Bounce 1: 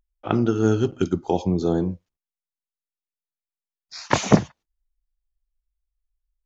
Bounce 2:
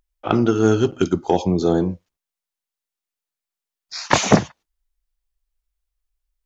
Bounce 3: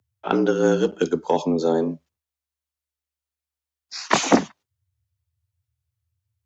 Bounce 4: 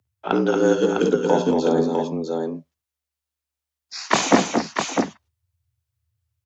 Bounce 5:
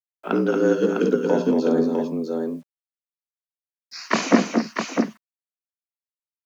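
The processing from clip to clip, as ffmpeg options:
-af "lowshelf=f=280:g=-6,acontrast=74"
-af "afreqshift=72,volume=0.75"
-af "aecho=1:1:53|69|218|231|654:0.251|0.2|0.224|0.501|0.562"
-af "highpass=180,equalizer=f=220:t=q:w=4:g=8,equalizer=f=830:t=q:w=4:g=-9,equalizer=f=3500:t=q:w=4:g=-9,lowpass=f=5700:w=0.5412,lowpass=f=5700:w=1.3066,acrusher=bits=9:mix=0:aa=0.000001,volume=0.891"

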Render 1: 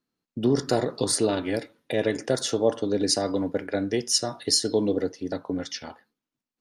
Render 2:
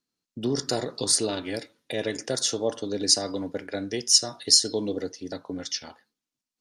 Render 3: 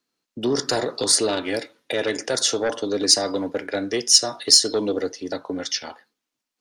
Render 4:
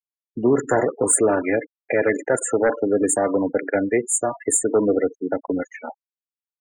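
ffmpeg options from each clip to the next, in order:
-af "equalizer=f=6100:w=0.58:g=10.5,volume=0.562"
-filter_complex "[0:a]acrossover=split=290|3300[s0][s1][s2];[s1]aeval=exprs='0.15*sin(PI/2*2*val(0)/0.15)':c=same[s3];[s2]acontrast=23[s4];[s0][s3][s4]amix=inputs=3:normalize=0,volume=0.891"
-af "afftfilt=real='re*gte(hypot(re,im),0.0447)':imag='im*gte(hypot(re,im),0.0447)':win_size=1024:overlap=0.75,asuperstop=centerf=4300:order=20:qfactor=0.87,aexciter=amount=1.4:drive=4.6:freq=5700,volume=1.78"

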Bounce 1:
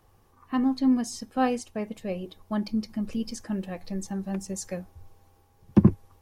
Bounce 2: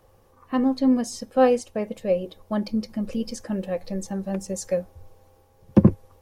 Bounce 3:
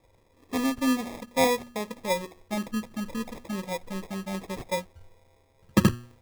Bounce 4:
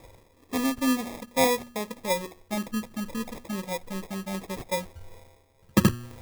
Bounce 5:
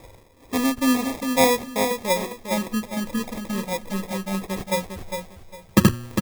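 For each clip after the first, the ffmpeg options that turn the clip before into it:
-af "equalizer=f=530:t=o:w=0.37:g=12,volume=1.26"
-af "bandreject=f=120.3:t=h:w=4,bandreject=f=240.6:t=h:w=4,bandreject=f=360.9:t=h:w=4,acrusher=samples=30:mix=1:aa=0.000001,volume=0.562"
-af "areverse,acompressor=mode=upward:threshold=0.02:ratio=2.5,areverse,crystalizer=i=0.5:c=0"
-af "aecho=1:1:404|808|1212:0.473|0.114|0.0273,volume=1.68"

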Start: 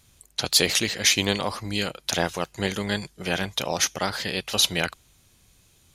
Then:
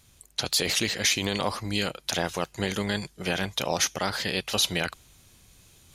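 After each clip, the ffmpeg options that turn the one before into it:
-af "alimiter=limit=0.237:level=0:latency=1:release=42,areverse,acompressor=mode=upward:threshold=0.00355:ratio=2.5,areverse"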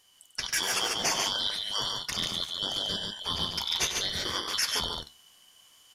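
-filter_complex "[0:a]afftfilt=real='real(if(lt(b,272),68*(eq(floor(b/68),0)*1+eq(floor(b/68),1)*3+eq(floor(b/68),2)*0+eq(floor(b/68),3)*2)+mod(b,68),b),0)':imag='imag(if(lt(b,272),68*(eq(floor(b/68),0)*1+eq(floor(b/68),1)*3+eq(floor(b/68),2)*0+eq(floor(b/68),3)*2)+mod(b,68),b),0)':win_size=2048:overlap=0.75,flanger=delay=9.3:depth=6.4:regen=67:speed=0.67:shape=triangular,asplit=2[s0][s1];[s1]aecho=0:1:96.21|142.9:0.316|0.631[s2];[s0][s2]amix=inputs=2:normalize=0"

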